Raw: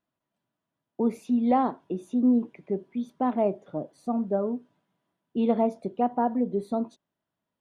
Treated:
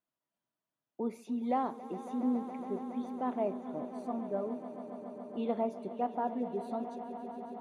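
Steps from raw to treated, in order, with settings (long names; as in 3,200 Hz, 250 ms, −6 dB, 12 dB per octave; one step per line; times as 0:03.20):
low-shelf EQ 250 Hz −7.5 dB
echo that builds up and dies away 139 ms, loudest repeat 5, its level −15.5 dB
level −7 dB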